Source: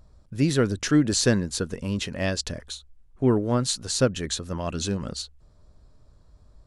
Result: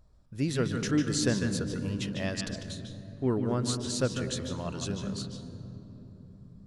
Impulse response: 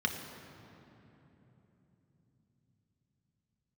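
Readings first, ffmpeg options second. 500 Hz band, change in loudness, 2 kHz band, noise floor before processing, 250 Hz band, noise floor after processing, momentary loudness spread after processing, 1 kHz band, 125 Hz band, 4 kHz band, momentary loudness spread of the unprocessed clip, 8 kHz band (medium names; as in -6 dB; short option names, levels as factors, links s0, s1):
-6.5 dB, -6.0 dB, -5.5 dB, -55 dBFS, -5.0 dB, -54 dBFS, 19 LU, -6.0 dB, -4.5 dB, -6.5 dB, 14 LU, -7.0 dB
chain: -filter_complex "[0:a]asplit=2[s0][s1];[1:a]atrim=start_sample=2205,adelay=148[s2];[s1][s2]afir=irnorm=-1:irlink=0,volume=0.282[s3];[s0][s3]amix=inputs=2:normalize=0,volume=0.422"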